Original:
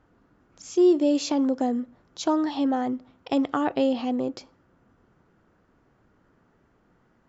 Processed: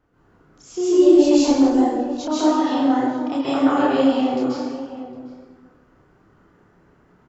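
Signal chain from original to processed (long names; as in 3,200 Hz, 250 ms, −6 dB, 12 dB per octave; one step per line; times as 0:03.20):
0:00.95–0:01.61: background noise brown −50 dBFS
tape wow and flutter 16 cents
slap from a distant wall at 130 metres, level −14 dB
dense smooth reverb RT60 1.3 s, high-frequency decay 0.7×, pre-delay 120 ms, DRR −10 dB
multi-voice chorus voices 2, 1.5 Hz, delay 30 ms, depth 3 ms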